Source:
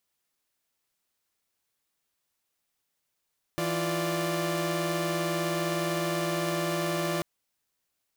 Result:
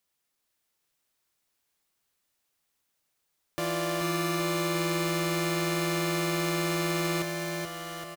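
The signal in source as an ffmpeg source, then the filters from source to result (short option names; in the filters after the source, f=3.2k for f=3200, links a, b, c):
-f lavfi -i "aevalsrc='0.0355*((2*mod(164.81*t,1)-1)+(2*mod(349.23*t,1)-1)+(2*mod(587.33*t,1)-1))':d=3.64:s=44100"
-filter_complex "[0:a]acrossover=split=240[a][b];[a]asoftclip=type=tanh:threshold=-38.5dB[c];[c][b]amix=inputs=2:normalize=0,aecho=1:1:430|817|1165|1479|1761:0.631|0.398|0.251|0.158|0.1"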